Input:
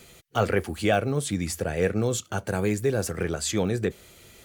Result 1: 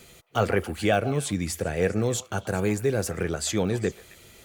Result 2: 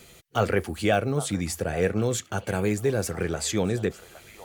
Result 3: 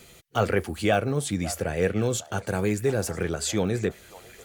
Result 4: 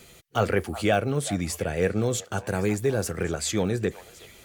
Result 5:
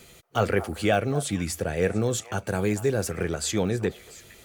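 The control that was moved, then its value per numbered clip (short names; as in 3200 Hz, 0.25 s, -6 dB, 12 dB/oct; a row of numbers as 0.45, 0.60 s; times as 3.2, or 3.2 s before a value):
delay with a stepping band-pass, time: 0.133, 0.813, 0.545, 0.371, 0.23 s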